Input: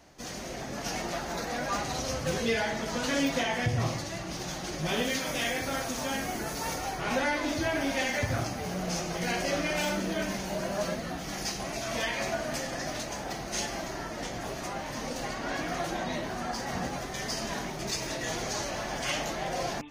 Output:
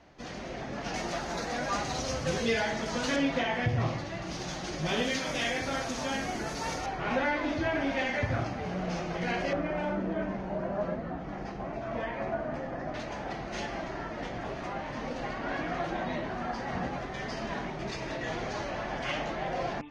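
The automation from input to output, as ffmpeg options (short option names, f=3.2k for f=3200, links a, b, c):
-af "asetnsamples=n=441:p=0,asendcmd='0.94 lowpass f 7000;3.16 lowpass f 3200;4.22 lowpass f 5900;6.86 lowpass f 2900;9.53 lowpass f 1300;12.94 lowpass f 2800',lowpass=3.5k"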